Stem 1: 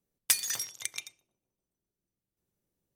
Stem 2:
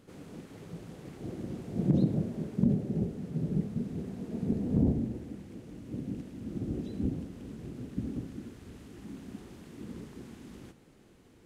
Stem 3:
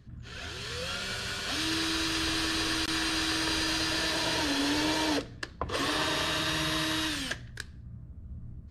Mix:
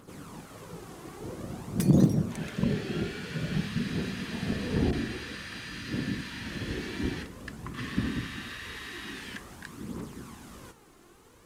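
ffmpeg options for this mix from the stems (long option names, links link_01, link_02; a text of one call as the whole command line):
ffmpeg -i stem1.wav -i stem2.wav -i stem3.wav -filter_complex "[0:a]adelay=1500,volume=-14.5dB[link_01];[1:a]aphaser=in_gain=1:out_gain=1:delay=3:decay=0.44:speed=0.5:type=triangular,highshelf=frequency=4600:gain=11,volume=0dB[link_02];[2:a]highpass=frequency=2000:width_type=q:width=2.9,acompressor=threshold=-31dB:ratio=6,adelay=2050,volume=-10.5dB[link_03];[link_01][link_02][link_03]amix=inputs=3:normalize=0,equalizer=frequency=1100:width=1.4:gain=11" out.wav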